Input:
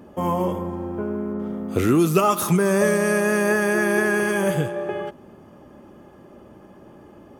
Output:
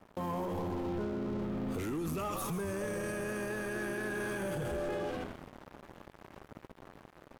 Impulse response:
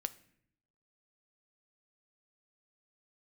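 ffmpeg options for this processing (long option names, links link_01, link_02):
-filter_complex "[0:a]asplit=2[link_01][link_02];[link_02]asplit=5[link_03][link_04][link_05][link_06][link_07];[link_03]adelay=137,afreqshift=-85,volume=-8.5dB[link_08];[link_04]adelay=274,afreqshift=-170,volume=-15.2dB[link_09];[link_05]adelay=411,afreqshift=-255,volume=-22dB[link_10];[link_06]adelay=548,afreqshift=-340,volume=-28.7dB[link_11];[link_07]adelay=685,afreqshift=-425,volume=-35.5dB[link_12];[link_08][link_09][link_10][link_11][link_12]amix=inputs=5:normalize=0[link_13];[link_01][link_13]amix=inputs=2:normalize=0,aeval=exprs='sgn(val(0))*max(abs(val(0))-0.00841,0)':channel_layout=same,dynaudnorm=framelen=310:gausssize=11:maxgain=8dB,alimiter=level_in=3dB:limit=-24dB:level=0:latency=1:release=12,volume=-3dB,asoftclip=type=tanh:threshold=-31.5dB,asplit=2[link_14][link_15];[link_15]aecho=0:1:80:0.141[link_16];[link_14][link_16]amix=inputs=2:normalize=0,volume=1dB"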